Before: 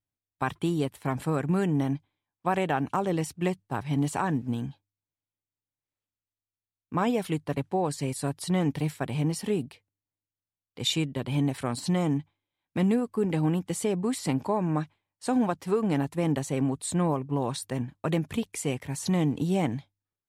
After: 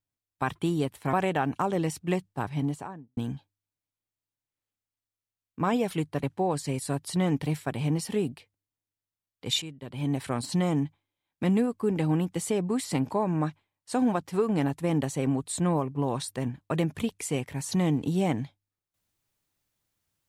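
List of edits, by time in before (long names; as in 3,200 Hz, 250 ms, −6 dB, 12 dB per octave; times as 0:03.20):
0:01.13–0:02.47: remove
0:03.74–0:04.51: fade out and dull
0:10.96–0:11.53: fade in quadratic, from −13 dB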